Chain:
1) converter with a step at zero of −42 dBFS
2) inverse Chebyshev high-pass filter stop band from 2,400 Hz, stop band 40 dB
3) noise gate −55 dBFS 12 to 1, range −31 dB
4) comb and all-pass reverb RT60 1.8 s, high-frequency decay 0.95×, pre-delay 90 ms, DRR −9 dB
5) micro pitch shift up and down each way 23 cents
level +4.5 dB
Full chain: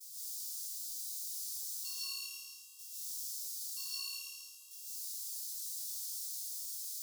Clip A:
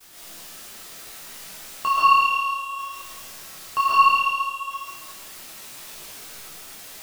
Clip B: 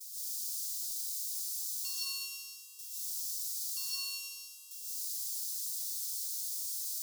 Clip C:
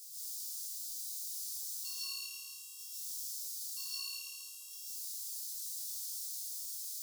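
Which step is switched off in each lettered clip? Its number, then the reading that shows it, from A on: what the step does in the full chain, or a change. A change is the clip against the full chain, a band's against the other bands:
2, change in crest factor +6.5 dB
5, change in integrated loudness +4.0 LU
3, change in momentary loudness spread −2 LU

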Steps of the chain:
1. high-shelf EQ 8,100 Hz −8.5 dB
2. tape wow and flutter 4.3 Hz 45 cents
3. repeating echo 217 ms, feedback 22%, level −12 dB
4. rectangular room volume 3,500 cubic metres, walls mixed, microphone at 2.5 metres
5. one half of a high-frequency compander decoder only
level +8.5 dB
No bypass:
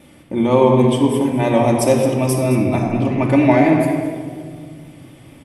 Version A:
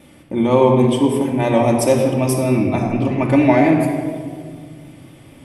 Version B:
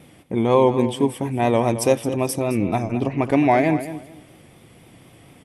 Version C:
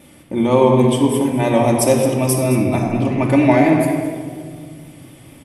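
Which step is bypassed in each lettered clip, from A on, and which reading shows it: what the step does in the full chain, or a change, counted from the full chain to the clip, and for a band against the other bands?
3, change in momentary loudness spread −2 LU
4, change in momentary loudness spread −8 LU
1, 8 kHz band +5.0 dB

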